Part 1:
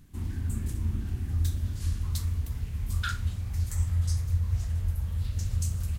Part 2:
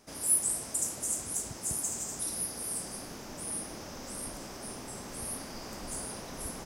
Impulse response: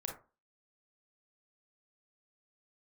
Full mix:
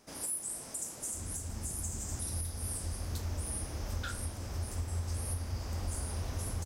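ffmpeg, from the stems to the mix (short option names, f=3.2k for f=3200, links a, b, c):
-filter_complex "[0:a]adelay=1000,volume=-6.5dB[a];[1:a]volume=-4.5dB,asplit=2[b][c];[c]volume=-5.5dB[d];[2:a]atrim=start_sample=2205[e];[d][e]afir=irnorm=-1:irlink=0[f];[a][b][f]amix=inputs=3:normalize=0,alimiter=level_in=2.5dB:limit=-24dB:level=0:latency=1:release=437,volume=-2.5dB"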